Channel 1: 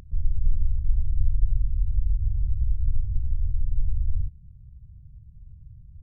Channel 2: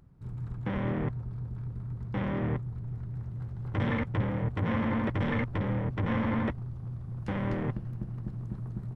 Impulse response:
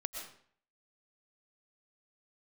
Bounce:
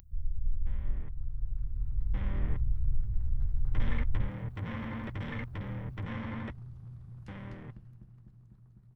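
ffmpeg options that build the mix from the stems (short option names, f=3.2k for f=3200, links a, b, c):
-filter_complex "[0:a]aemphasis=mode=production:type=75kf,acontrast=52,volume=-14.5dB,afade=t=out:st=0.83:d=0.23:silence=0.334965[a];[1:a]volume=-17.5dB[b];[a][b]amix=inputs=2:normalize=0,equalizer=f=460:w=0.34:g=-8,dynaudnorm=f=320:g=11:m=13.5dB"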